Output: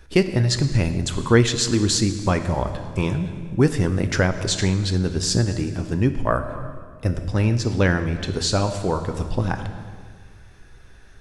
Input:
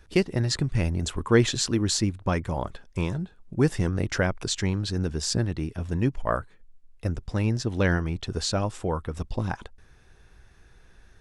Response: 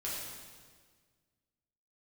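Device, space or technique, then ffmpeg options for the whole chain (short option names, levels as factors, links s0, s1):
compressed reverb return: -filter_complex "[0:a]asplit=2[s0][s1];[1:a]atrim=start_sample=2205[s2];[s1][s2]afir=irnorm=-1:irlink=0,acompressor=threshold=0.0794:ratio=6,volume=0.562[s3];[s0][s3]amix=inputs=2:normalize=0,volume=1.41"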